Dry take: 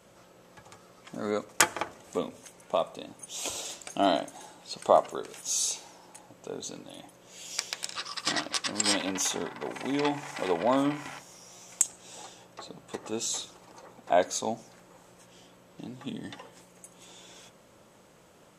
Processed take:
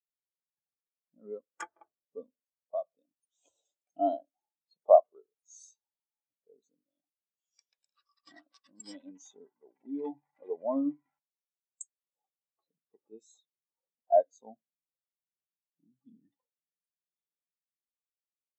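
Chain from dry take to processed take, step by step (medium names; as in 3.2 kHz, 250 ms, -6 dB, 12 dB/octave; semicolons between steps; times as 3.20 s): spectral contrast expander 2.5:1; trim -2 dB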